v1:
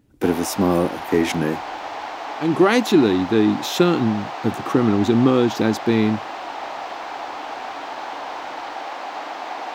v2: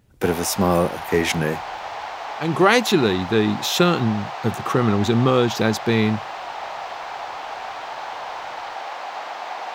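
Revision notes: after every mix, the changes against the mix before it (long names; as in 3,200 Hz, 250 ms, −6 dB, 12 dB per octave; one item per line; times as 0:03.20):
speech +4.0 dB
master: add parametric band 290 Hz −13 dB 0.67 octaves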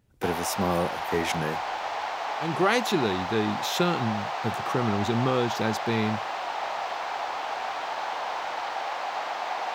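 speech −8.0 dB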